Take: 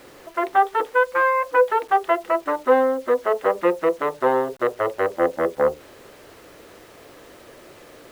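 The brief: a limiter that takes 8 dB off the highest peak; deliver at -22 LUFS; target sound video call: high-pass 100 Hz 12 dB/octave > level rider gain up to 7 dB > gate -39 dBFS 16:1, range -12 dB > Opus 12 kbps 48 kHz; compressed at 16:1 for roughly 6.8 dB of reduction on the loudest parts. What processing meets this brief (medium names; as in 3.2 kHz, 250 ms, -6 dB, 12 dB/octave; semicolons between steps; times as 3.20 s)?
compression 16:1, threshold -18 dBFS; peak limiter -17.5 dBFS; high-pass 100 Hz 12 dB/octave; level rider gain up to 7 dB; gate -39 dBFS 16:1, range -12 dB; trim +6.5 dB; Opus 12 kbps 48 kHz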